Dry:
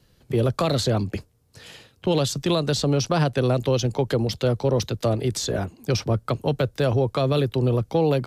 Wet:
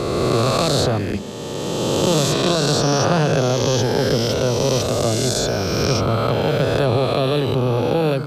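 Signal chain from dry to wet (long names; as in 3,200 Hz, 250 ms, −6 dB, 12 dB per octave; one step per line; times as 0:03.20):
peak hold with a rise ahead of every peak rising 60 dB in 2.99 s
on a send: convolution reverb RT60 0.50 s, pre-delay 123 ms, DRR 18 dB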